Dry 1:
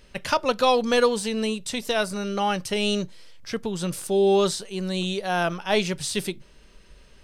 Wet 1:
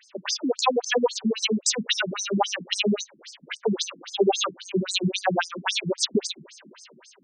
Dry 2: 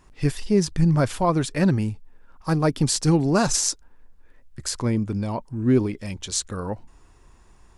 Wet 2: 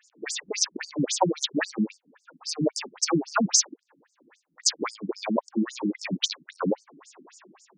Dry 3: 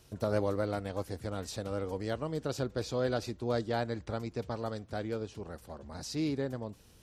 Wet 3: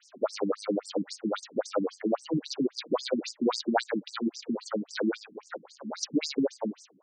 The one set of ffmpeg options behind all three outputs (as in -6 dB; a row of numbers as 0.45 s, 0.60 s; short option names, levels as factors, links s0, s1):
-filter_complex "[0:a]dynaudnorm=f=100:g=7:m=2.82,equalizer=f=6400:t=o:w=0.31:g=8,acrossover=split=810|5300[s0][s1][s2];[s0]acompressor=threshold=0.0631:ratio=4[s3];[s1]acompressor=threshold=0.0631:ratio=4[s4];[s2]acompressor=threshold=0.0158:ratio=4[s5];[s3][s4][s5]amix=inputs=3:normalize=0,afftfilt=real='re*between(b*sr/1024,220*pow(6700/220,0.5+0.5*sin(2*PI*3.7*pts/sr))/1.41,220*pow(6700/220,0.5+0.5*sin(2*PI*3.7*pts/sr))*1.41)':imag='im*between(b*sr/1024,220*pow(6700/220,0.5+0.5*sin(2*PI*3.7*pts/sr))/1.41,220*pow(6700/220,0.5+0.5*sin(2*PI*3.7*pts/sr))*1.41)':win_size=1024:overlap=0.75,volume=2.24"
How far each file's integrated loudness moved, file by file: -1.0 LU, -4.0 LU, +4.0 LU